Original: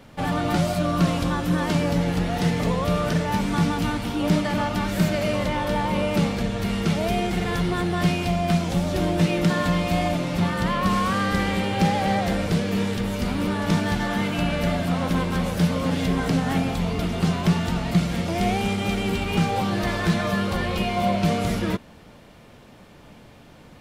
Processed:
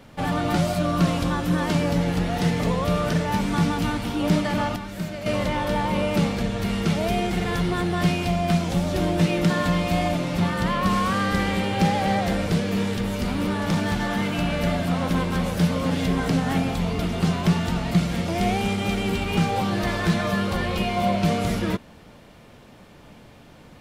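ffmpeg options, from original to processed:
-filter_complex "[0:a]asettb=1/sr,asplit=3[a][b][c];[a]atrim=end=12.614[d];[b]atrim=start=12.61:end=14.6,asetpts=PTS-STARTPTS,afade=t=in:d=0.004:c=qsin,afade=t=out:st=1.986:d=0.004:c=qsin,volume=17.5dB,asoftclip=hard,volume=-17.5dB[e];[c]atrim=start=14.596[f];[d][e]acrossfade=d=0.004:c1=hsin:c2=qsin[g];[g][f]acrossfade=d=0.004:c1=qsin:c2=hsin,asplit=3[h][i][j];[h]atrim=end=4.762[k];[i]atrim=start=4.758:end=5.262,asetpts=PTS-STARTPTS,volume=-9dB[l];[j]atrim=start=5.258[m];[k][l]acrossfade=d=0.004:c1=hsin:c2=hsin[n];[n][m]acrossfade=d=0.004:c1=hsin:c2=hsin"

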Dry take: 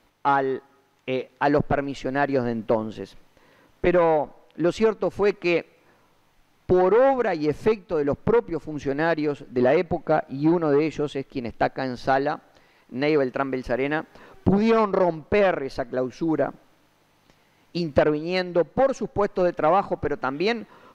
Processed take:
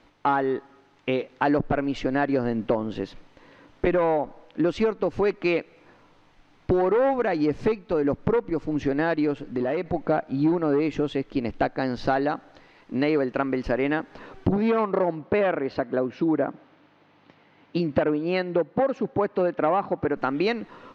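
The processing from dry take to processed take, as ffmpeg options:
-filter_complex "[0:a]asplit=3[a][b][c];[a]afade=t=out:st=9.33:d=0.02[d];[b]acompressor=threshold=-30dB:ratio=2.5:attack=3.2:release=140:knee=1:detection=peak,afade=t=in:st=9.33:d=0.02,afade=t=out:st=9.93:d=0.02[e];[c]afade=t=in:st=9.93:d=0.02[f];[d][e][f]amix=inputs=3:normalize=0,asettb=1/sr,asplit=3[g][h][i];[g]atrim=end=14.564[j];[h]atrim=start=14.56:end=20.17,asetpts=PTS-STARTPTS,afade=t=in:d=0.004:c=qsin,afade=t=out:st=5.606:d=0.004:c=qsin,highpass=110,lowpass=3.5k[k];[i]atrim=start=20.166[l];[j][k]acrossfade=d=0.004:c1=hsin:c2=qsin[m];[m][l]acrossfade=d=0.004:c1=qsin:c2=hsin,lowpass=4.9k,equalizer=f=290:t=o:w=0.27:g=4.5,acompressor=threshold=-26dB:ratio=2.5,volume=4dB"

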